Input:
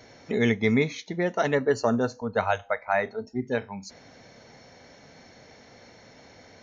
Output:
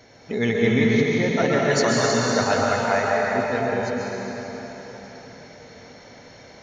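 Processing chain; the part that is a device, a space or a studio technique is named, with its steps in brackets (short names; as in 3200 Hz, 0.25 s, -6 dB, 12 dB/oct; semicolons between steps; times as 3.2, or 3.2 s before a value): 1.6–2.33 EQ curve 200 Hz 0 dB, 440 Hz -6 dB, 4300 Hz +13 dB; cathedral (reverb RT60 4.5 s, pre-delay 0.12 s, DRR -4.5 dB)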